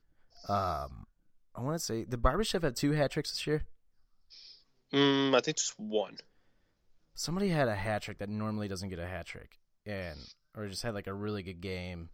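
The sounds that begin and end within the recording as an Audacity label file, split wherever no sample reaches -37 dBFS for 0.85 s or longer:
4.930000	6.190000	sound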